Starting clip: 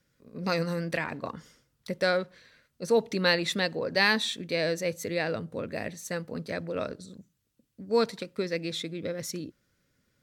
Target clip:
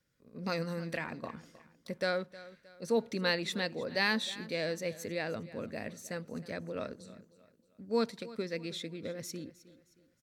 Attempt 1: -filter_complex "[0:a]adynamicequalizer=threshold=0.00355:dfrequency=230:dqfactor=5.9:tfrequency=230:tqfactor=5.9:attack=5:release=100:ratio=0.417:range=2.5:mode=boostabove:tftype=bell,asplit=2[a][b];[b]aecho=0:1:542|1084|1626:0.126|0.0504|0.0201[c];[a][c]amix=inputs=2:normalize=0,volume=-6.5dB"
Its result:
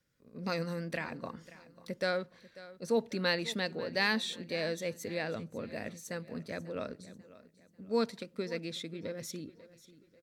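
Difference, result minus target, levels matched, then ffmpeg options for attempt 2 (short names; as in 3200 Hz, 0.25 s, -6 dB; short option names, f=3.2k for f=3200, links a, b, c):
echo 0.23 s late
-filter_complex "[0:a]adynamicequalizer=threshold=0.00355:dfrequency=230:dqfactor=5.9:tfrequency=230:tqfactor=5.9:attack=5:release=100:ratio=0.417:range=2.5:mode=boostabove:tftype=bell,asplit=2[a][b];[b]aecho=0:1:312|624|936:0.126|0.0504|0.0201[c];[a][c]amix=inputs=2:normalize=0,volume=-6.5dB"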